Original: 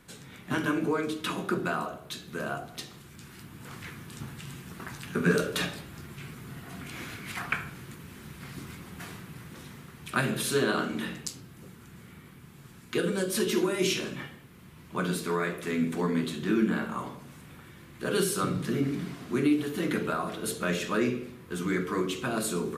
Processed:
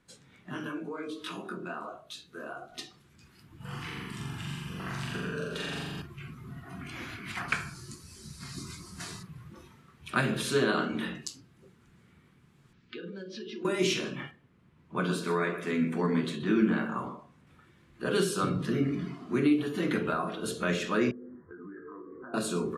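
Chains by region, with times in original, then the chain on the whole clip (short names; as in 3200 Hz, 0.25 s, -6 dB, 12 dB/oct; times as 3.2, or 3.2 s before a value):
0.5–2.72 high shelf 4800 Hz +5 dB + compressor 2:1, threshold -33 dBFS + detuned doubles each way 46 cents
3.56–6.02 bell 3000 Hz +4.5 dB 0.23 oct + compressor 16:1, threshold -34 dBFS + flutter echo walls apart 7.3 m, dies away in 1.4 s
7.48–9.23 band shelf 6600 Hz +11 dB + notch 780 Hz, Q 17
12.73–13.65 LPF 5300 Hz 24 dB/oct + bell 790 Hz -6 dB 1.4 oct + compressor 4:1, threshold -39 dBFS
14.31–17.47 echo 0.126 s -12 dB + mismatched tape noise reduction decoder only
21.11–22.34 steep low-pass 1900 Hz 96 dB/oct + doubler 20 ms -5 dB + compressor 16:1, threshold -40 dBFS
whole clip: Bessel low-pass 7000 Hz, order 2; spectral noise reduction 11 dB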